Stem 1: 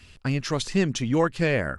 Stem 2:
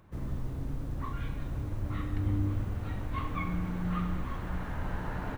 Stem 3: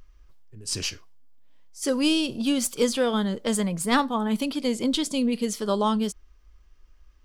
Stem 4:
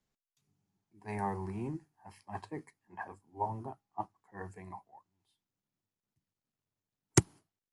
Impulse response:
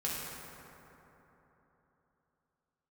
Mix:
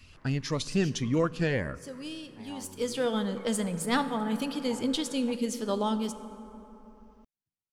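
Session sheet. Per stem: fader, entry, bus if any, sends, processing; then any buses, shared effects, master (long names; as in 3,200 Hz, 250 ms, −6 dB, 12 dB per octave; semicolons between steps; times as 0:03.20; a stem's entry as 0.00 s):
−4.0 dB, 0.00 s, send −23 dB, parametric band 8,300 Hz −6 dB 0.26 octaves; phaser whose notches keep moving one way rising 1.7 Hz
−5.5 dB, 0.00 s, no send, resonant band-pass 1,500 Hz, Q 1.2; automatic ducking −8 dB, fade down 0.25 s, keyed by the third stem
0:02.49 −19 dB → 0:03.03 −6.5 dB, 0.00 s, send −13 dB, notch filter 1,100 Hz, Q 11
−11.5 dB, 1.30 s, no send, no processing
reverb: on, RT60 3.6 s, pre-delay 3 ms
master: no processing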